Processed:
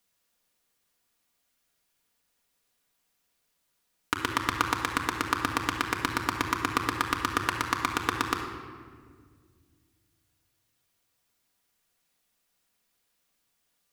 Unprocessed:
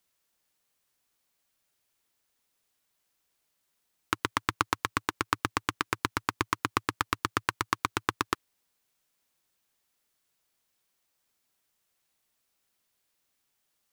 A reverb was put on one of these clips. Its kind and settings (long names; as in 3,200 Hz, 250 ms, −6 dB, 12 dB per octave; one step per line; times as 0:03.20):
rectangular room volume 2,700 cubic metres, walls mixed, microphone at 1.8 metres